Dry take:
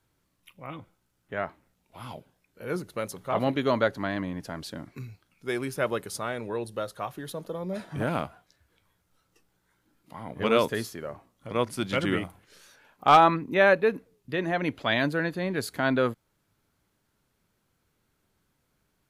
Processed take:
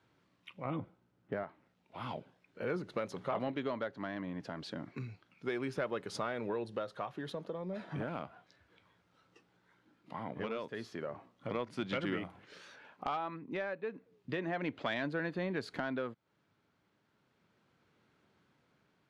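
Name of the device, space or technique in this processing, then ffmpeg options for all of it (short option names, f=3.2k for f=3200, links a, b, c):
AM radio: -filter_complex "[0:a]highpass=130,lowpass=3.7k,acompressor=threshold=-36dB:ratio=6,asoftclip=type=tanh:threshold=-25dB,tremolo=f=0.33:d=0.39,asettb=1/sr,asplit=3[a][b][c];[a]atrim=end=0.654[d];[b]atrim=start=0.65:end=1.44,asetpts=PTS-STARTPTS,afade=t=in:d=0.004:c=qsin,afade=t=out:st=0.786:d=0.004:c=qsin,tiltshelf=f=970:g=6[e];[c]atrim=start=1.436[f];[d][e]acrossfade=d=0.004:c1=hsin:c2=qsin[g];[g][f]acrossfade=d=0.004:c1=qsin:c2=hsin,volume=4dB"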